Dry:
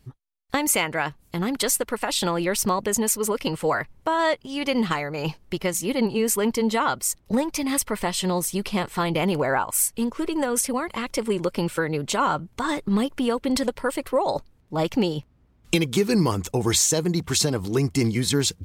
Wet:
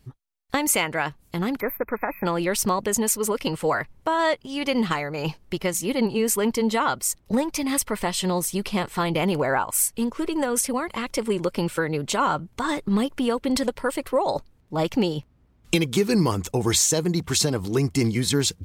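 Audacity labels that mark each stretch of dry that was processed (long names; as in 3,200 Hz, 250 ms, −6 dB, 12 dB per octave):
1.600000	2.260000	time-frequency box erased 2,600–12,000 Hz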